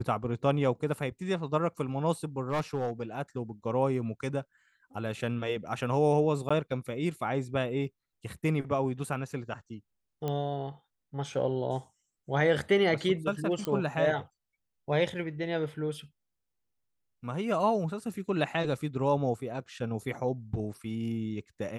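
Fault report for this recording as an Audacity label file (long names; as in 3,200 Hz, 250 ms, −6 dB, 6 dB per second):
2.420000	2.910000	clipping −25.5 dBFS
6.490000	6.500000	drop-out 15 ms
10.280000	10.280000	click −20 dBFS
13.650000	13.650000	click −18 dBFS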